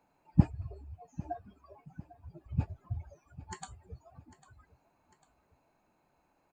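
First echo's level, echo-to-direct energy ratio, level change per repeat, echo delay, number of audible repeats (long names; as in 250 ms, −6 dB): −18.0 dB, −17.0 dB, −6.0 dB, 799 ms, 2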